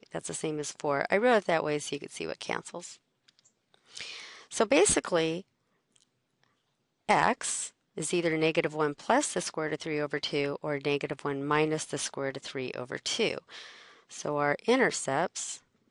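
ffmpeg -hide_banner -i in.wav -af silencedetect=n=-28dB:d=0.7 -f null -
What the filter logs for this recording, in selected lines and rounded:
silence_start: 2.77
silence_end: 3.97 | silence_duration: 1.20
silence_start: 5.38
silence_end: 7.09 | silence_duration: 1.71
silence_start: 13.38
silence_end: 14.25 | silence_duration: 0.87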